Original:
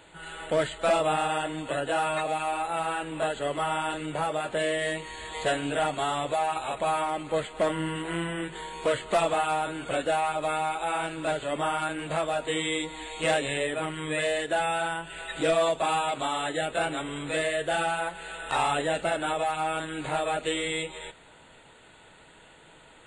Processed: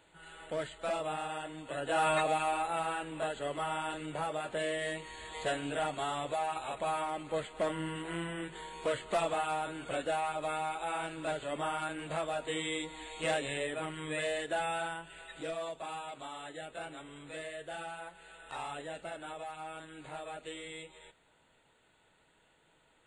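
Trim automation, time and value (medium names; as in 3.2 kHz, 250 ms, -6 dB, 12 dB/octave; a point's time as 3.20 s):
1.67 s -11 dB
2.09 s 0 dB
3.16 s -7 dB
14.79 s -7 dB
15.53 s -15 dB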